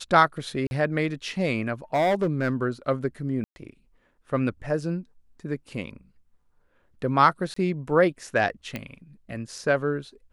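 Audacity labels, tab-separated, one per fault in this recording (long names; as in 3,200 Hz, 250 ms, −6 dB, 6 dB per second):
0.670000	0.710000	drop-out 41 ms
1.940000	2.620000	clipping −18.5 dBFS
3.440000	3.560000	drop-out 120 ms
7.540000	7.560000	drop-out 24 ms
8.760000	8.760000	click −17 dBFS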